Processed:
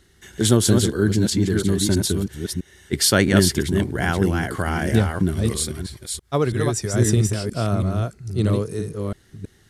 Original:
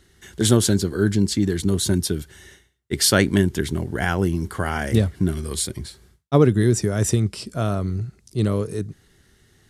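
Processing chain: reverse delay 0.326 s, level -4 dB; 5.75–6.94 bell 220 Hz -9.5 dB 2 oct

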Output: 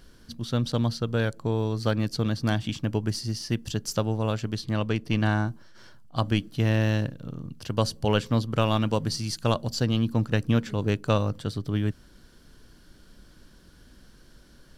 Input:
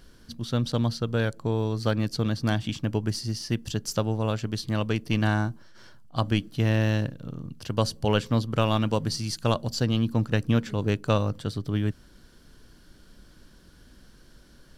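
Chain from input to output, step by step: 4.55–5.48 high shelf 7200 Hz -7.5 dB

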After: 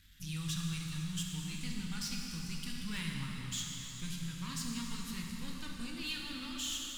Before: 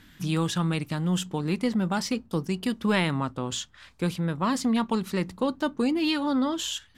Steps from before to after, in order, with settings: half-wave gain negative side -7 dB; bell 390 Hz -14.5 dB 2.1 oct; notch 650 Hz, Q 16; de-hum 71.96 Hz, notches 34; soft clip -24 dBFS, distortion -21 dB; passive tone stack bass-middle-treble 6-0-2; plate-style reverb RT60 4.4 s, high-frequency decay 0.85×, DRR -1.5 dB; gain +11.5 dB

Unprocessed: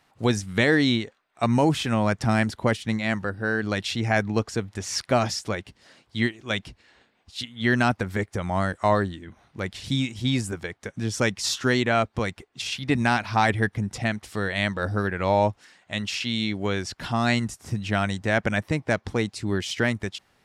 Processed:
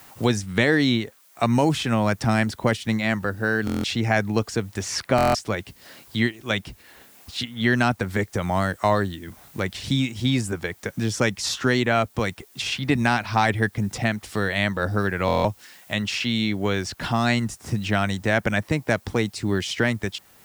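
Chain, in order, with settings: added noise blue -60 dBFS; stuck buffer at 3.65/5.16/15.26, samples 1024, times 7; three-band squash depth 40%; gain +1.5 dB

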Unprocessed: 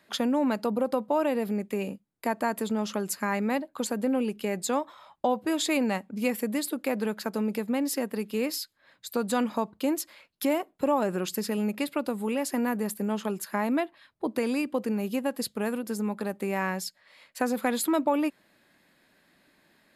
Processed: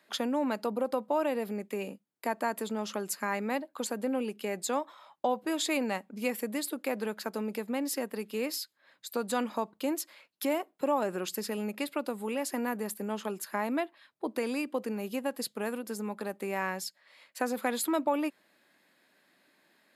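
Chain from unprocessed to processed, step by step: Bessel high-pass 270 Hz, order 2; gain -2.5 dB

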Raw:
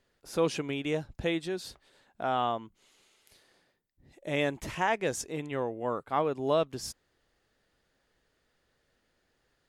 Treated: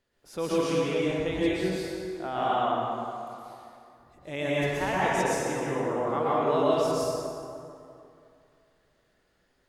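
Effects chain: plate-style reverb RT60 2.6 s, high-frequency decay 0.55×, pre-delay 0.105 s, DRR -8.5 dB; gain -5 dB

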